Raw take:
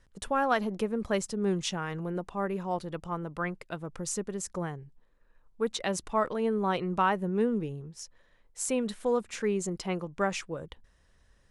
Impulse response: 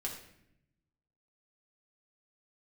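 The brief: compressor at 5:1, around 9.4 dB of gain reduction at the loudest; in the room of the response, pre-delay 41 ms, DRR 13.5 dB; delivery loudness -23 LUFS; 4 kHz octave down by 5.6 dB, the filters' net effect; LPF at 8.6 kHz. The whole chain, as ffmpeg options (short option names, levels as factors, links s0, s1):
-filter_complex "[0:a]lowpass=8600,equalizer=f=4000:t=o:g=-7.5,acompressor=threshold=0.0251:ratio=5,asplit=2[s0][s1];[1:a]atrim=start_sample=2205,adelay=41[s2];[s1][s2]afir=irnorm=-1:irlink=0,volume=0.2[s3];[s0][s3]amix=inputs=2:normalize=0,volume=5.31"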